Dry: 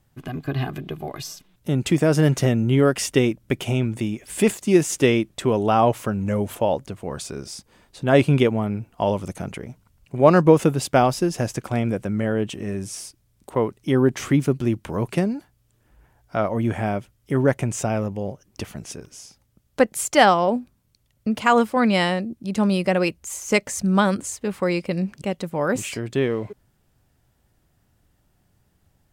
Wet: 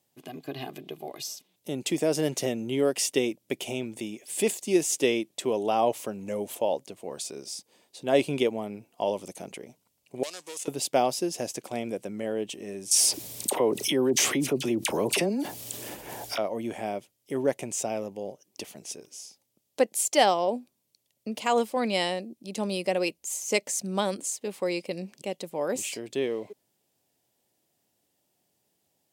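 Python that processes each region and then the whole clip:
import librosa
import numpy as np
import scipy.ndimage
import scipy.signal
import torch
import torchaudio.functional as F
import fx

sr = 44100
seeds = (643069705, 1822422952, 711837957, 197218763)

y = fx.chain(x, sr, fx.leveller(passes=2),
    fx.bandpass_q(hz=7800.0, q=1.6),
    fx.band_squash(depth_pct=100), at=(10.23, 10.68))
y = fx.chain(y, sr, fx.dispersion(late='lows', ms=41.0, hz=1500.0),
    fx.env_flatten(amount_pct=70), at=(12.91, 16.38))
y = scipy.signal.sosfilt(scipy.signal.bessel(2, 490.0, 'highpass', norm='mag', fs=sr, output='sos'), y)
y = fx.peak_eq(y, sr, hz=1400.0, db=-14.5, octaves=1.2)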